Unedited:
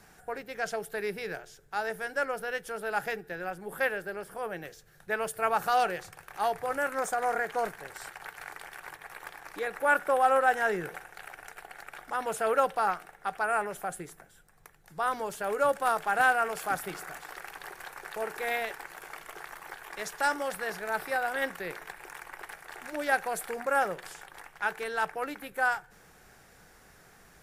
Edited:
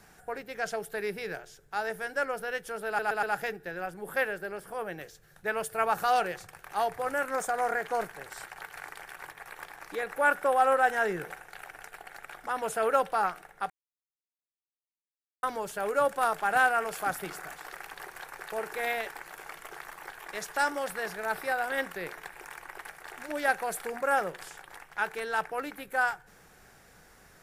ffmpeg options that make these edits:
-filter_complex "[0:a]asplit=6[a][b][c][d][e][f];[a]atrim=end=2.992[g];[b]atrim=start=2.868:end=2.992[h];[c]atrim=start=2.868:end=2.992[i];[d]atrim=start=2.868:end=13.34,asetpts=PTS-STARTPTS,afade=t=out:st=10.468:d=0.004:c=hsin[j];[e]atrim=start=13.34:end=15.07,asetpts=PTS-STARTPTS,volume=0[k];[f]atrim=start=15.07,asetpts=PTS-STARTPTS,afade=t=in:d=0.004:c=hsin[l];[g][h]acrossfade=d=0.004:c1=hsin:c2=hsin[m];[m][i]acrossfade=d=0.004:c1=hsin:c2=hsin[n];[j][k][l]concat=n=3:v=0:a=1[o];[n][o]acrossfade=d=0.004:c1=hsin:c2=hsin"

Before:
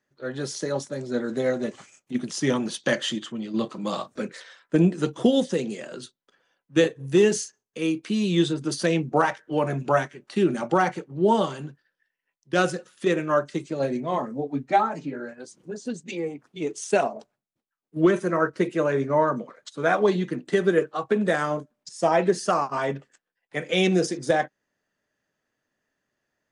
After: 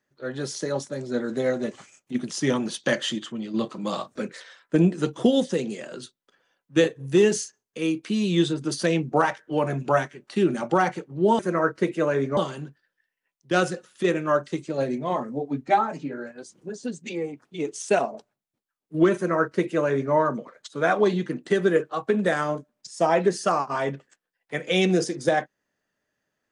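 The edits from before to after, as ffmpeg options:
-filter_complex "[0:a]asplit=3[a][b][c];[a]atrim=end=11.392[d];[b]atrim=start=18.168:end=19.152[e];[c]atrim=start=11.388[f];[d][e]acrossfade=d=0.004:c1=hsin:c2=hsin[g];[g][f]acrossfade=d=0.004:c1=hsin:c2=hsin"

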